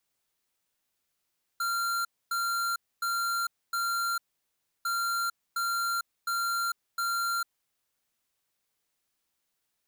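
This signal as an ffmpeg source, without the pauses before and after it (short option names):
-f lavfi -i "aevalsrc='0.0335*(2*lt(mod(1380*t,1),0.5)-1)*clip(min(mod(mod(t,3.25),0.71),0.45-mod(mod(t,3.25),0.71))/0.005,0,1)*lt(mod(t,3.25),2.84)':d=6.5:s=44100"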